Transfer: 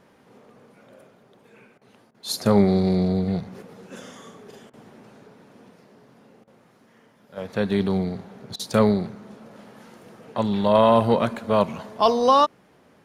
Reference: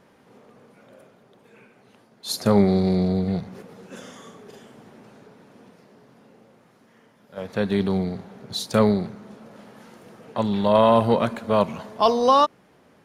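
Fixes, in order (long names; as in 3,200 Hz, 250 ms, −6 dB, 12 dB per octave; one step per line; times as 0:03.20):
repair the gap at 0:01.78/0:02.11/0:04.70/0:06.44/0:08.56, 33 ms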